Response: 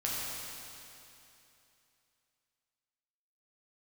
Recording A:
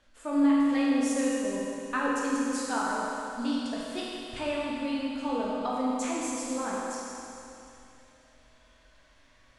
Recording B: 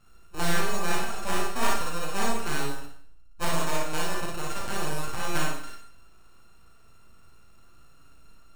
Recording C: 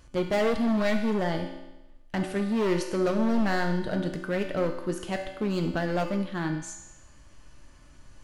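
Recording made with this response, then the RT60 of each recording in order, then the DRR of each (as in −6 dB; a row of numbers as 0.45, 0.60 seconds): A; 2.9, 0.55, 1.0 seconds; −6.5, −2.5, 3.0 decibels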